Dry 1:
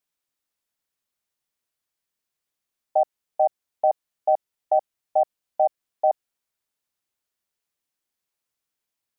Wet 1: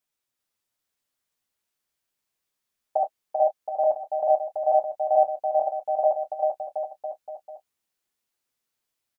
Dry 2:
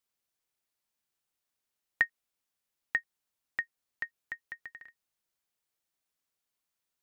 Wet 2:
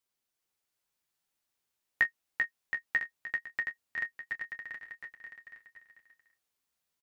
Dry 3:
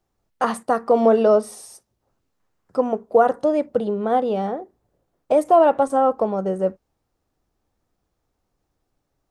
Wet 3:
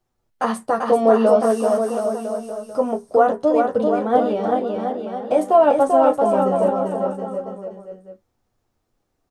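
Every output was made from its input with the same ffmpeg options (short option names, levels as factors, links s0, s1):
-filter_complex "[0:a]asplit=2[s0][s1];[s1]adelay=27,volume=0.224[s2];[s0][s2]amix=inputs=2:normalize=0,flanger=delay=8.1:depth=6.9:regen=-13:speed=0.24:shape=sinusoidal,aecho=1:1:390|721.5|1003|1243|1446:0.631|0.398|0.251|0.158|0.1,volume=1.41"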